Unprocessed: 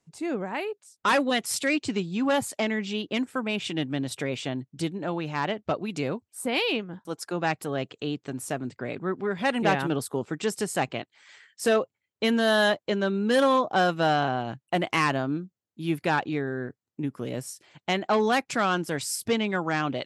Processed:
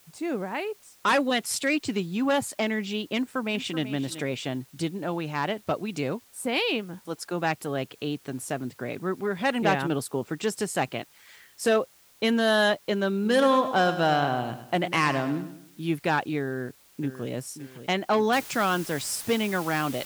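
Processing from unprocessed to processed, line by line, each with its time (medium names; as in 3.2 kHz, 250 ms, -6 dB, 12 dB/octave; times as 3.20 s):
3.16–3.82 s: echo throw 380 ms, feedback 15%, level -13 dB
13.14–15.88 s: feedback delay 103 ms, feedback 41%, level -11 dB
16.45–17.29 s: echo throw 570 ms, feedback 45%, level -11.5 dB
18.33 s: noise floor step -58 dB -42 dB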